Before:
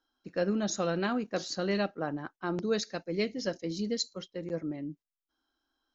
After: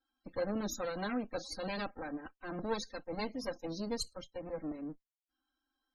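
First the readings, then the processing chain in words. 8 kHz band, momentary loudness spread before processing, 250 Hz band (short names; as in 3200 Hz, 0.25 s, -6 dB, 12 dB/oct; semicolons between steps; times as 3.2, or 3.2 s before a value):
n/a, 8 LU, -7.0 dB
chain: minimum comb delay 3.8 ms; loudest bins only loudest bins 64; gain -3 dB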